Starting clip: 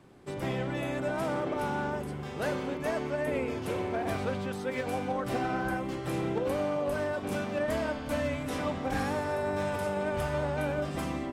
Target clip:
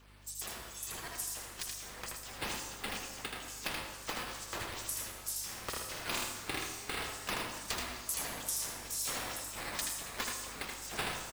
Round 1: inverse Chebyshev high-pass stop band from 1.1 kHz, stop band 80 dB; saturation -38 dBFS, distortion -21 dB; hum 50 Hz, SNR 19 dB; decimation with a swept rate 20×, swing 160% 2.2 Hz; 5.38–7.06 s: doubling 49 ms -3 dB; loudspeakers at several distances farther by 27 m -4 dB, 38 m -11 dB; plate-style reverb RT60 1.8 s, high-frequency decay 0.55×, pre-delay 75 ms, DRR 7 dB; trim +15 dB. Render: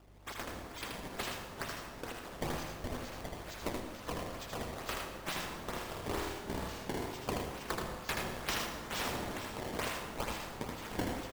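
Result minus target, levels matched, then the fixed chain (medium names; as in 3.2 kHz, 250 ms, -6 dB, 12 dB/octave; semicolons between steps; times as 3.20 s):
decimation with a swept rate: distortion +18 dB
inverse Chebyshev high-pass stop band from 1.1 kHz, stop band 80 dB; saturation -38 dBFS, distortion -21 dB; hum 50 Hz, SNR 19 dB; decimation with a swept rate 4×, swing 160% 2.2 Hz; 5.38–7.06 s: doubling 49 ms -3 dB; loudspeakers at several distances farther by 27 m -4 dB, 38 m -11 dB; plate-style reverb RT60 1.8 s, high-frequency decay 0.55×, pre-delay 75 ms, DRR 7 dB; trim +15 dB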